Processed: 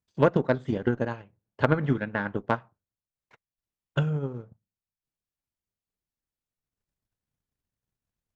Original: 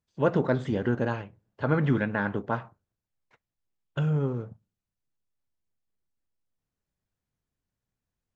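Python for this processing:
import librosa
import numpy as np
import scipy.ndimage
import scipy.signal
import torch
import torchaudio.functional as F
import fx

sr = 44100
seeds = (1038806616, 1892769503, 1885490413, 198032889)

y = fx.transient(x, sr, attack_db=9, sustain_db=-7)
y = fx.cheby_harmonics(y, sr, harmonics=(2, 4), levels_db=(-8, -19), full_scale_db=-2.0)
y = y * librosa.db_to_amplitude(-3.5)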